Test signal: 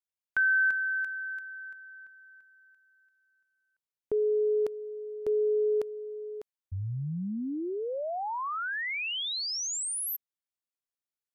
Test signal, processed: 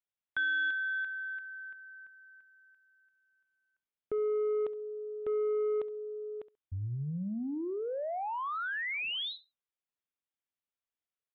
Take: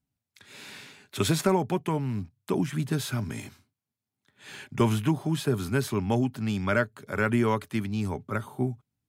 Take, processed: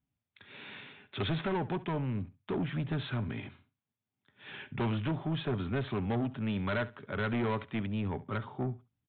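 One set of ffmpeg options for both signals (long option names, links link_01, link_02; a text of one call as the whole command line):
ffmpeg -i in.wav -af "aresample=8000,asoftclip=type=tanh:threshold=-26dB,aresample=44100,aecho=1:1:68|136:0.126|0.0239,volume=-1.5dB" out.wav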